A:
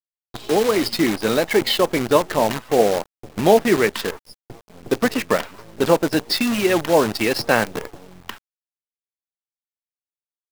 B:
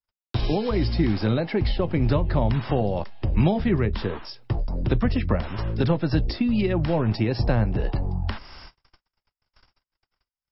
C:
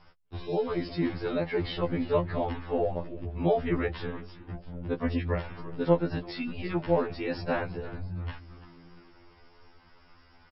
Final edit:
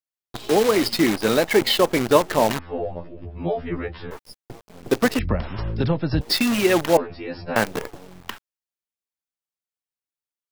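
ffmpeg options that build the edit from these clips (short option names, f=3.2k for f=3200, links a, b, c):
-filter_complex "[2:a]asplit=2[a][b];[0:a]asplit=4[c][d][e][f];[c]atrim=end=2.592[g];[a]atrim=start=2.588:end=4.112[h];[d]atrim=start=4.108:end=5.192[i];[1:a]atrim=start=5.188:end=6.212[j];[e]atrim=start=6.208:end=6.972[k];[b]atrim=start=6.968:end=7.562[l];[f]atrim=start=7.558[m];[g][h]acrossfade=d=0.004:c1=hsin:c2=hsin[n];[n][i]acrossfade=d=0.004:c1=hsin:c2=hsin[o];[o][j]acrossfade=d=0.004:c1=hsin:c2=hsin[p];[p][k]acrossfade=d=0.004:c1=hsin:c2=hsin[q];[q][l]acrossfade=d=0.004:c1=hsin:c2=hsin[r];[r][m]acrossfade=d=0.004:c1=hsin:c2=hsin"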